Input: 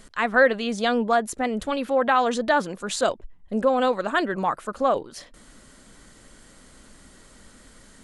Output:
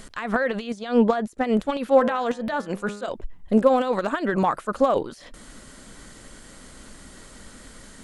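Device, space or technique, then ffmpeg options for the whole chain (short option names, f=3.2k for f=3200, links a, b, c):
de-esser from a sidechain: -filter_complex "[0:a]asplit=2[a][b];[b]highpass=6.6k,apad=whole_len=354303[c];[a][c]sidechaincompress=threshold=-56dB:ratio=12:attack=1.5:release=60,asettb=1/sr,asplit=3[d][e][f];[d]atrim=end=0.784[g];[e]atrim=start=0.78:end=1.28,asetpts=PTS-STARTPTS,afade=t=in:d=0.004:c=qsin,afade=t=out:st=0.496:d=0.004:c=qsin,lowpass=7.4k[h];[f]atrim=start=1.276[i];[g][h]acrossfade=d=0.004:c1=hsin:c2=qsin[j];[j][i]acrossfade=d=0.004:c1=qsin:c2=hsin,asettb=1/sr,asplit=3[k][l][m];[k]atrim=end=1.964[n];[l]atrim=start=1.96:end=3.1,asetpts=PTS-STARTPTS,afade=t=in:d=0.004:c=qsin,afade=t=out:st=1.136:d=0.004:c=qsin,bandreject=f=102.8:t=h:w=4,bandreject=f=205.6:t=h:w=4,bandreject=f=308.4:t=h:w=4,bandreject=f=411.2:t=h:w=4,bandreject=f=514:t=h:w=4,bandreject=f=616.8:t=h:w=4,bandreject=f=719.6:t=h:w=4,bandreject=f=822.4:t=h:w=4,bandreject=f=925.2:t=h:w=4,bandreject=f=1.028k:t=h:w=4,bandreject=f=1.1308k:t=h:w=4,bandreject=f=1.2336k:t=h:w=4,bandreject=f=1.3364k:t=h:w=4,bandreject=f=1.4392k:t=h:w=4,bandreject=f=1.542k:t=h:w=4,bandreject=f=1.6448k:t=h:w=4,bandreject=f=1.7476k:t=h:w=4,bandreject=f=1.8504k:t=h:w=4,bandreject=f=1.9532k:t=h:w=4,bandreject=f=2.056k:t=h:w=4,bandreject=f=2.1588k:t=h:w=4,bandreject=f=2.2616k:t=h:w=4,bandreject=f=2.3644k:t=h:w=4,bandreject=f=2.4672k:t=h:w=4,bandreject=f=2.57k:t=h:w=4,bandreject=f=2.6728k:t=h:w=4,bandreject=f=2.7756k:t=h:w=4,bandreject=f=2.8784k:t=h:w=4,bandreject=f=2.9812k:t=h:w=4,bandreject=f=3.084k:t=h:w=4,bandreject=f=3.1868k:t=h:w=4[o];[m]atrim=start=3.096[p];[n][o]acrossfade=d=0.004:c1=hsin:c2=qsin[q];[q][p]acrossfade=d=0.004:c1=qsin:c2=hsin,volume=8dB"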